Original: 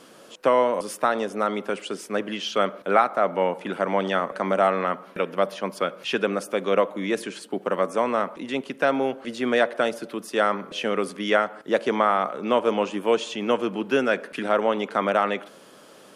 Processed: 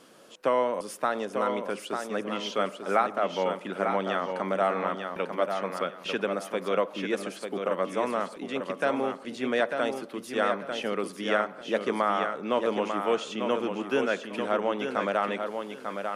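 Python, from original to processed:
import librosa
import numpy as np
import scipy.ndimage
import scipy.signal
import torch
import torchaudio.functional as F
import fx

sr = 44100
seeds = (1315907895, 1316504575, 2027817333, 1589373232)

y = fx.echo_feedback(x, sr, ms=895, feedback_pct=24, wet_db=-6.0)
y = y * 10.0 ** (-5.5 / 20.0)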